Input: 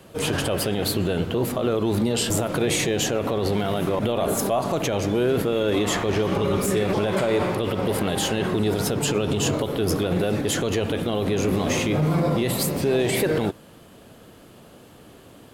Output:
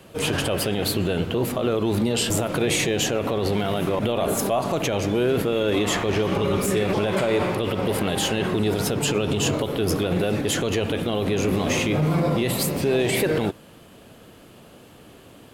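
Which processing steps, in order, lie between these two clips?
bell 2600 Hz +3 dB 0.65 oct

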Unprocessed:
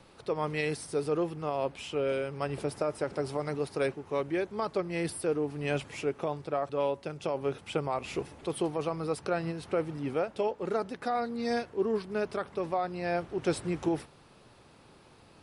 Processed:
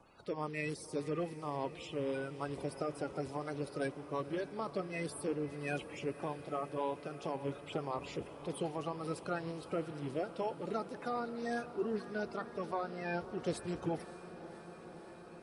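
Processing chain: bin magnitudes rounded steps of 30 dB; on a send: diffused feedback echo 0.574 s, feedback 79%, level -15 dB; on the sum: gain -6.5 dB

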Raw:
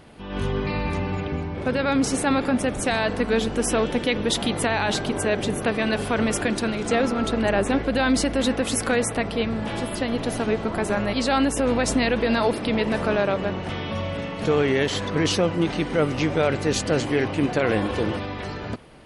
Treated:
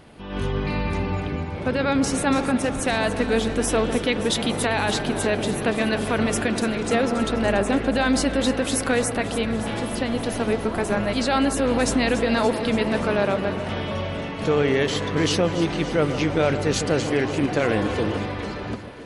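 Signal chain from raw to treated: echo with dull and thin repeats by turns 0.143 s, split 1300 Hz, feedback 81%, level -10.5 dB

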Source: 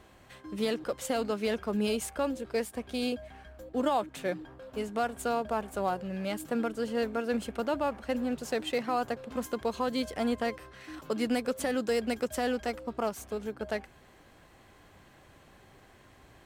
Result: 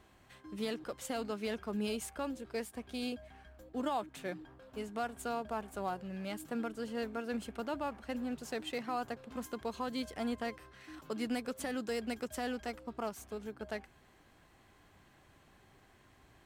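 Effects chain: bell 530 Hz -4.5 dB 0.44 oct; gain -6 dB

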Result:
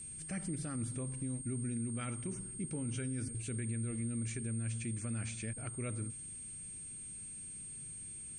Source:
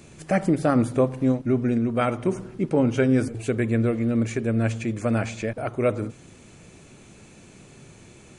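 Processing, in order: passive tone stack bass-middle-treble 6-0-2; limiter -38 dBFS, peak gain reduction 9.5 dB; whine 8600 Hz -51 dBFS; gain +6.5 dB

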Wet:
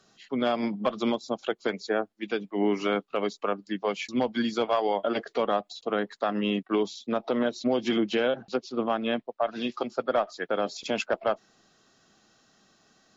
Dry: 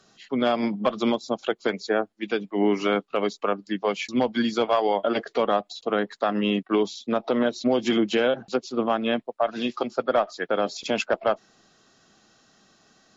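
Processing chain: 7.66–9.72 LPF 6300 Hz 24 dB/oct; gain -3.5 dB

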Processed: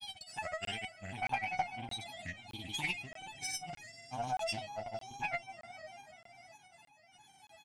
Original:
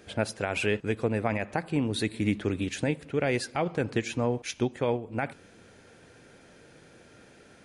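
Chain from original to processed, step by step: HPF 120 Hz 12 dB/oct; comb 1 ms, depth 90%; step gate "x.x.x..xxx" 99 bpm -60 dB; resonator 730 Hz, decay 0.46 s, mix 100%; diffused feedback echo 0.492 s, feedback 51%, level -14 dB; grains, grains 20/s, pitch spread up and down by 3 st; added harmonics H 6 -26 dB, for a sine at -39 dBFS; crackling interface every 0.62 s, samples 1024, zero, from 0.65; Doppler distortion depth 0.18 ms; gain +17.5 dB

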